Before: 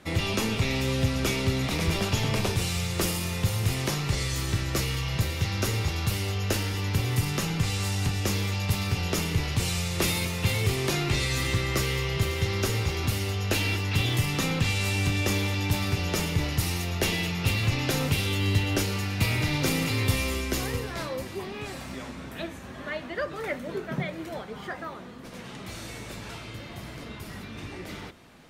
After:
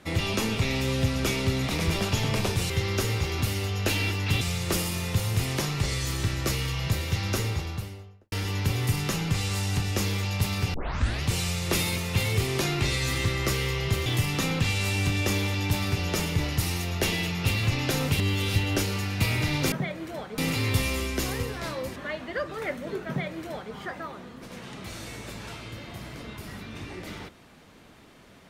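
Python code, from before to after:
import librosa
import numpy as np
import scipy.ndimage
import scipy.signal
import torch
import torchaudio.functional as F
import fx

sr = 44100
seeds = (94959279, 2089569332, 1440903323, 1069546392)

y = fx.studio_fade_out(x, sr, start_s=5.58, length_s=1.03)
y = fx.edit(y, sr, fx.tape_start(start_s=9.03, length_s=0.48),
    fx.move(start_s=12.35, length_s=1.71, to_s=2.7),
    fx.reverse_span(start_s=18.19, length_s=0.37),
    fx.cut(start_s=21.3, length_s=1.48),
    fx.duplicate(start_s=23.9, length_s=0.66, to_s=19.72), tone=tone)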